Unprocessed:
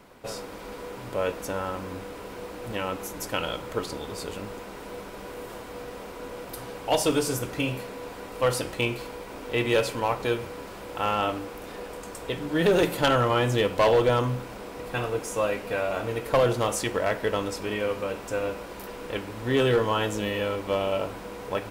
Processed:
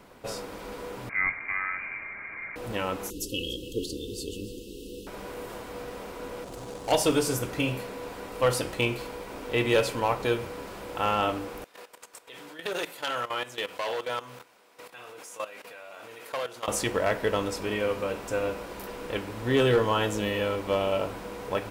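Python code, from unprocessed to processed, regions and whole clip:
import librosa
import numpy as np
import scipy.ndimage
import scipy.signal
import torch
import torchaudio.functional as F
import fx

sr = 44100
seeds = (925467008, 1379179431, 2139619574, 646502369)

y = fx.chain(x, sr, fx.highpass(hz=160.0, slope=24),
    fx.freq_invert(carrier_hz=2600), at=(1.09, 2.56))
y = fx.chain(y, sr, fx.brickwall_bandstop(low_hz=540.0, high_hz=2600.0),
    fx.comb(ms=3.1, depth=0.41),
    fx.echo_single(ms=288, db=-16.5), at=(3.1, 5.07))
y = fx.chain(y, sr, fx.median_filter(points=25),
    fx.peak_eq(hz=7900.0, db=12.5, octaves=1.8), at=(6.44, 6.92))
y = fx.chain(y, sr, fx.highpass(hz=1300.0, slope=6),
    fx.level_steps(step_db=15),
    fx.transformer_sat(knee_hz=880.0), at=(11.64, 16.68))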